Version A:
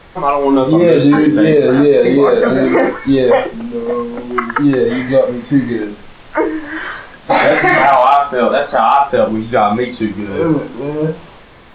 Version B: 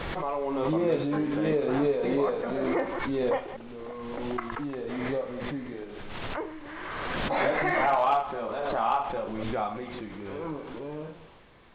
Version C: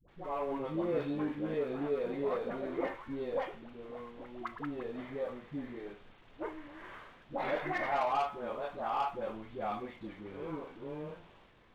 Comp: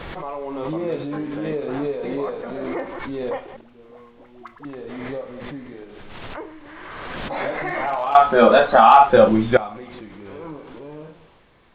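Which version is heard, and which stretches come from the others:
B
0:03.61–0:04.65: punch in from C
0:08.15–0:09.57: punch in from A

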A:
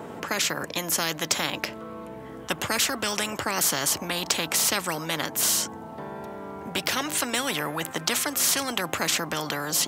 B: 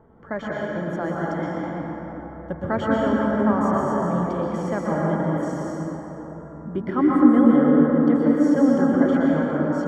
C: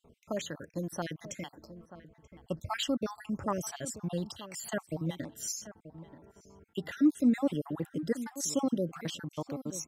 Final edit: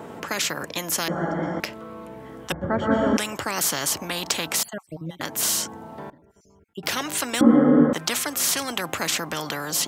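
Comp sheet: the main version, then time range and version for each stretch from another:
A
0:01.08–0:01.60: punch in from B
0:02.52–0:03.17: punch in from B
0:04.63–0:05.21: punch in from C
0:06.10–0:06.83: punch in from C
0:07.41–0:07.93: punch in from B

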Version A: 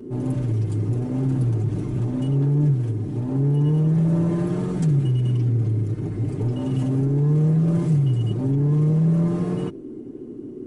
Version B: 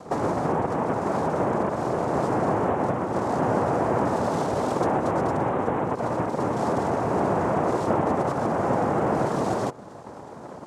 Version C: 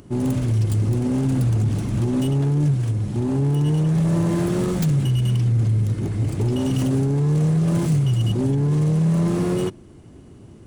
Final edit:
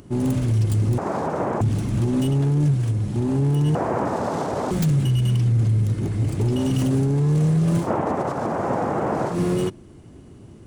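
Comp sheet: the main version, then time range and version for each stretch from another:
C
0:00.98–0:01.61: punch in from B
0:03.75–0:04.71: punch in from B
0:07.83–0:09.34: punch in from B, crossfade 0.10 s
not used: A

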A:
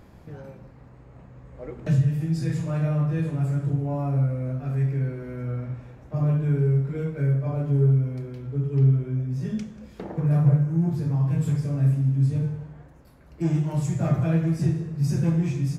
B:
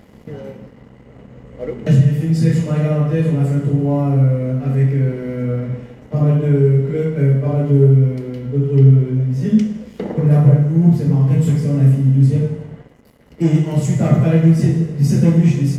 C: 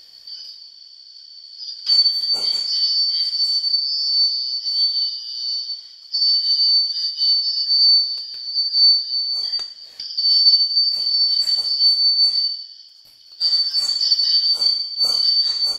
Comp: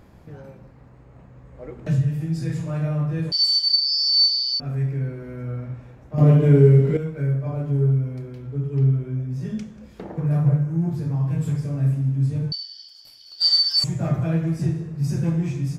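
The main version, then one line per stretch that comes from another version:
A
0:03.32–0:04.60: punch in from C
0:06.18–0:06.97: punch in from B
0:12.52–0:13.84: punch in from C

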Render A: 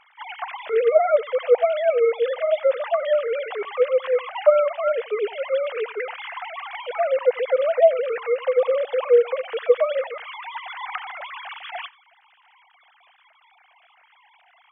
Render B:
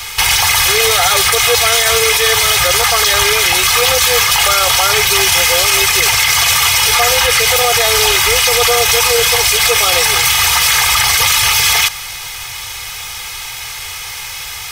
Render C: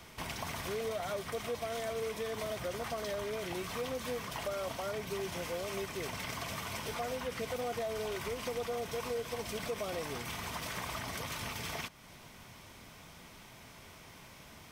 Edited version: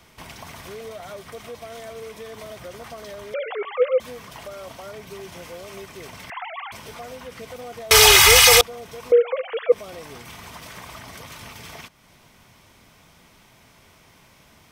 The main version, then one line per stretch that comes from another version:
C
0:03.34–0:04.00: punch in from A
0:06.30–0:06.72: punch in from A
0:07.91–0:08.61: punch in from B
0:09.12–0:09.72: punch in from A

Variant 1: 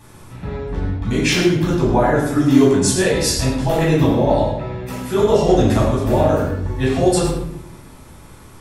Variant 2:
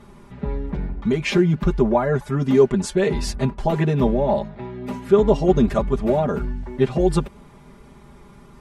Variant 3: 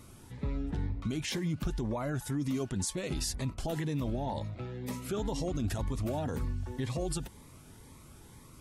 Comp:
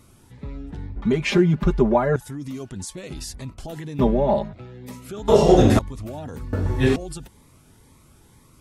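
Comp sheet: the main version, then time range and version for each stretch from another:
3
0:00.96–0:02.16: punch in from 2
0:03.99–0:04.53: punch in from 2
0:05.28–0:05.79: punch in from 1
0:06.53–0:06.96: punch in from 1

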